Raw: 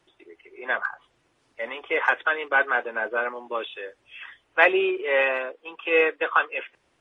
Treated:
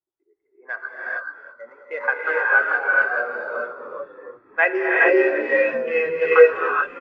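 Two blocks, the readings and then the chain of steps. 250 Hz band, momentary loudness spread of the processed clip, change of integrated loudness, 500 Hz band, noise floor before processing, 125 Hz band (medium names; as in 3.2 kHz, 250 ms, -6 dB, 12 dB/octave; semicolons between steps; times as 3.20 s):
+4.5 dB, 19 LU, +4.5 dB, +7.0 dB, -68 dBFS, no reading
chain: local Wiener filter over 15 samples; peaking EQ 1.6 kHz +4 dB 1.5 oct; frequency-shifting echo 329 ms, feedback 53%, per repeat -70 Hz, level -10.5 dB; gated-style reverb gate 470 ms rising, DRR -4 dB; spectral contrast expander 1.5:1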